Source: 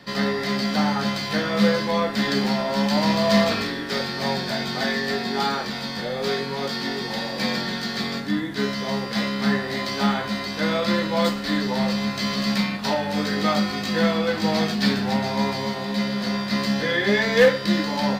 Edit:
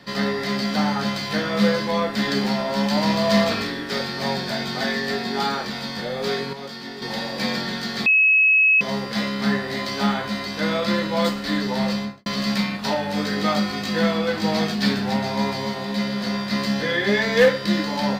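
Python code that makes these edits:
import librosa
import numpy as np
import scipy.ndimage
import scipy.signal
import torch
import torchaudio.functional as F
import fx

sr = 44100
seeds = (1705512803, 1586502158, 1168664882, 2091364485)

y = fx.studio_fade_out(x, sr, start_s=11.93, length_s=0.33)
y = fx.edit(y, sr, fx.clip_gain(start_s=6.53, length_s=0.49, db=-7.5),
    fx.bleep(start_s=8.06, length_s=0.75, hz=2570.0, db=-12.5), tone=tone)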